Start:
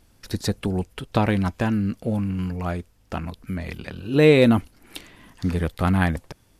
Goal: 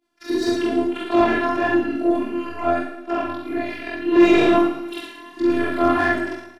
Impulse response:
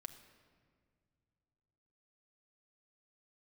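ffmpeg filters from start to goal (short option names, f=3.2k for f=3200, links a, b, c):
-filter_complex "[0:a]afftfilt=real='re':imag='-im':win_size=4096:overlap=0.75,equalizer=f=240:w=2.1:g=12,agate=range=-33dB:threshold=-49dB:ratio=3:detection=peak,highpass=f=170:p=1,afftfilt=real='hypot(re,im)*cos(PI*b)':imag='0':win_size=512:overlap=0.75,asplit=2[a][b];[b]aecho=0:1:57|68:0.316|0.398[c];[a][c]amix=inputs=2:normalize=0,asplit=2[d][e];[e]highpass=f=720:p=1,volume=22dB,asoftclip=type=tanh:threshold=-10dB[f];[d][f]amix=inputs=2:normalize=0,lowpass=f=1.5k:p=1,volume=-6dB,lowshelf=f=340:g=3,asplit=2[g][h];[h]aecho=0:1:111|222|333|444|555:0.355|0.156|0.0687|0.0302|0.0133[i];[g][i]amix=inputs=2:normalize=0,flanger=delay=20:depth=3.4:speed=1.6,volume=6.5dB"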